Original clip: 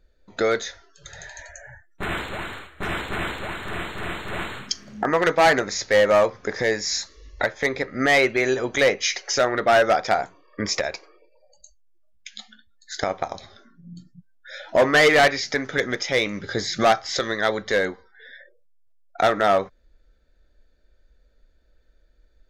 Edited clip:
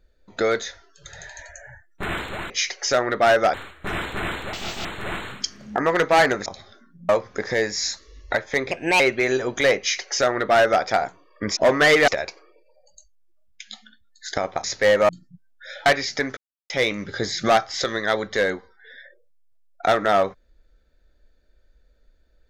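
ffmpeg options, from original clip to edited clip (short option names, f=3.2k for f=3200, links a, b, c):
-filter_complex "[0:a]asplit=16[a][b][c][d][e][f][g][h][i][j][k][l][m][n][o][p];[a]atrim=end=2.502[q];[b]atrim=start=8.958:end=10.002[r];[c]atrim=start=2.498:end=3.494[s];[d]atrim=start=3.49:end=4.12,asetpts=PTS-STARTPTS,asetrate=86877,aresample=44100,atrim=end_sample=14103,asetpts=PTS-STARTPTS[t];[e]atrim=start=4.116:end=5.732[u];[f]atrim=start=13.298:end=13.932[v];[g]atrim=start=6.178:end=7.804[w];[h]atrim=start=7.8:end=8.17,asetpts=PTS-STARTPTS,asetrate=56448,aresample=44100[x];[i]atrim=start=8.166:end=10.742[y];[j]atrim=start=14.698:end=15.212[z];[k]atrim=start=10.738:end=13.302[aa];[l]atrim=start=5.728:end=6.182[ab];[m]atrim=start=13.928:end=14.702[ac];[n]atrim=start=15.208:end=15.72,asetpts=PTS-STARTPTS,afade=t=out:st=0.508:d=0.004:c=hsin[ad];[o]atrim=start=15.72:end=16.05,asetpts=PTS-STARTPTS,volume=0[ae];[p]atrim=start=16.05,asetpts=PTS-STARTPTS,afade=t=in:d=0.004:c=hsin[af];[q][r]acrossfade=d=0.004:c1=hsin:c2=hsin[ag];[ag][s]acrossfade=d=0.004:c1=hsin:c2=hsin[ah];[ah][t]acrossfade=d=0.004:c1=hsin:c2=hsin[ai];[ai][u]acrossfade=d=0.004:c1=hsin:c2=hsin[aj];[aj][v]acrossfade=d=0.004:c1=hsin:c2=hsin[ak];[ak][w]acrossfade=d=0.004:c1=hsin:c2=hsin[al];[al][x]acrossfade=d=0.004:c1=hsin:c2=hsin[am];[am][y]acrossfade=d=0.004:c1=hsin:c2=hsin[an];[an][z]acrossfade=d=0.004:c1=hsin:c2=hsin[ao];[ao][aa]acrossfade=d=0.004:c1=hsin:c2=hsin[ap];[ap][ab]acrossfade=d=0.004:c1=hsin:c2=hsin[aq];[aq][ac]acrossfade=d=0.004:c1=hsin:c2=hsin[ar];[ad][ae][af]concat=n=3:v=0:a=1[as];[ar][as]acrossfade=d=0.004:c1=hsin:c2=hsin"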